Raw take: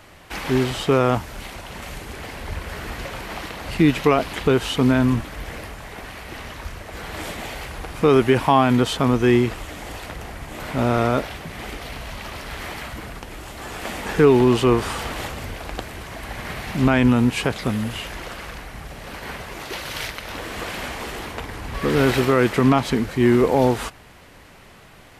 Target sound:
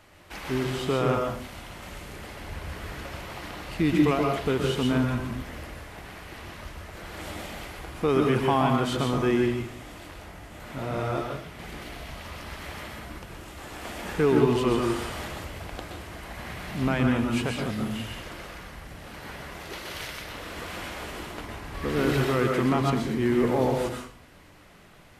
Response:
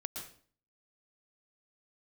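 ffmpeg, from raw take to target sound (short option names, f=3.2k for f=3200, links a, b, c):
-filter_complex "[0:a]asettb=1/sr,asplit=3[a][b][c];[a]atrim=end=9.484[d];[b]atrim=start=9.48:end=11.59,asetpts=PTS-STARTPTS,afade=t=in:d=0.004:c=qsin,afade=t=out:st=2.106:d=0.004:c=qsin,flanger=delay=18:depth=5.6:speed=1[e];[c]atrim=start=11.586[f];[d][e]acrossfade=d=0.004:c1=hsin:c2=qsin[g];[g][f]acrossfade=d=0.004:c1=qsin:c2=hsin[h];[1:a]atrim=start_sample=2205,asetrate=41013,aresample=44100[i];[h][i]afir=irnorm=-1:irlink=0,volume=-6dB"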